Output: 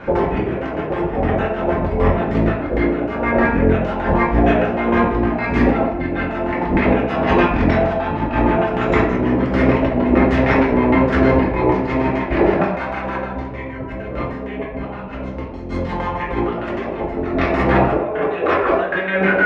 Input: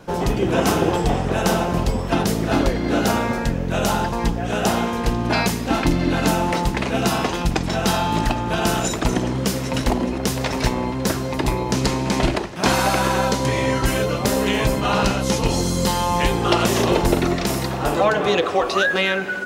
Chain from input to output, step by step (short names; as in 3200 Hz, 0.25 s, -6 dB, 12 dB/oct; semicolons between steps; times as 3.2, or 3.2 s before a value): 13.25–15.7 low shelf 240 Hz +7.5 dB; negative-ratio compressor -25 dBFS, ratio -0.5; LFO low-pass square 6.5 Hz 640–2000 Hz; reverb RT60 0.75 s, pre-delay 3 ms, DRR -5 dB